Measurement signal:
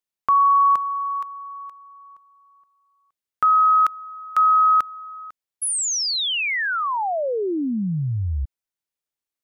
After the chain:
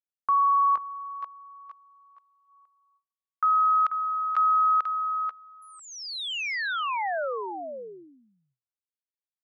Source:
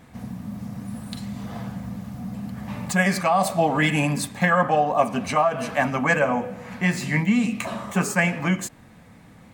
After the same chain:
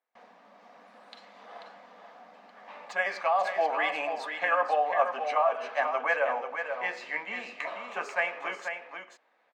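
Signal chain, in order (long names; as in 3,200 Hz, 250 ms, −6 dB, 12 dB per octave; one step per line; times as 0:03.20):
high-pass filter 490 Hz 24 dB per octave
noise gate with hold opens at −42 dBFS, closes at −46 dBFS, hold 303 ms, range −27 dB
high-frequency loss of the air 210 metres
on a send: single-tap delay 488 ms −7 dB
on the sum: level −4.5 dB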